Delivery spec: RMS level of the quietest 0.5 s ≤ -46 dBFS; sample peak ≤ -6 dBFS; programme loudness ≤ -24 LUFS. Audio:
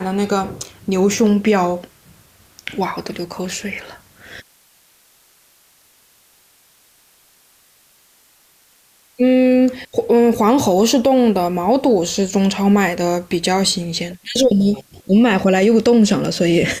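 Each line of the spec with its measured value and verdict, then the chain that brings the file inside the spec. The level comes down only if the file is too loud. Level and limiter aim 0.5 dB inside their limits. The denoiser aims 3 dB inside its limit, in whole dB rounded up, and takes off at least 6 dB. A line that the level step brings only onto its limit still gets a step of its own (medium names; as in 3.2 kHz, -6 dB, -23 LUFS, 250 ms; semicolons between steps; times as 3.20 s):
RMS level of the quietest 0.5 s -54 dBFS: pass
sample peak -5.5 dBFS: fail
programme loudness -16.5 LUFS: fail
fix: trim -8 dB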